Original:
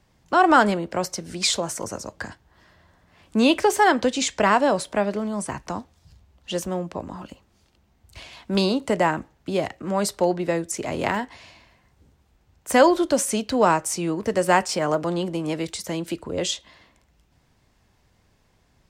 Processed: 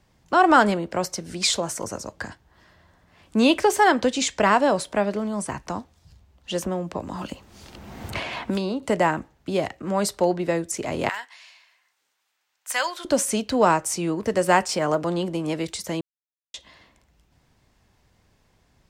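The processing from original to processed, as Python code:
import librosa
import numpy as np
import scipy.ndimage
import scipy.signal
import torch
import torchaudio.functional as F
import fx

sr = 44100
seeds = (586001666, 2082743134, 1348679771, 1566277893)

y = fx.band_squash(x, sr, depth_pct=100, at=(6.62, 8.83))
y = fx.highpass(y, sr, hz=1400.0, slope=12, at=(11.09, 13.05))
y = fx.edit(y, sr, fx.silence(start_s=16.01, length_s=0.53), tone=tone)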